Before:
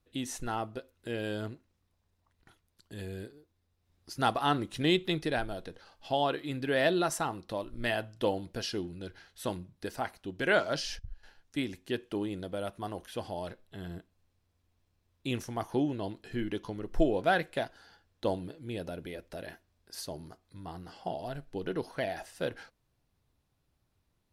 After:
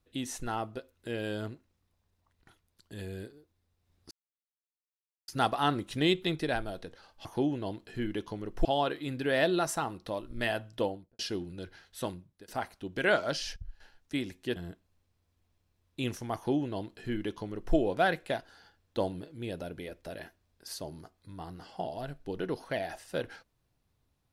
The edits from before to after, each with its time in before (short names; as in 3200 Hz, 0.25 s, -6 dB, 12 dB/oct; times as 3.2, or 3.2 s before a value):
4.11 insert silence 1.17 s
8.15–8.62 studio fade out
9.43–9.91 fade out, to -22.5 dB
11.99–13.83 cut
15.62–17.02 copy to 6.08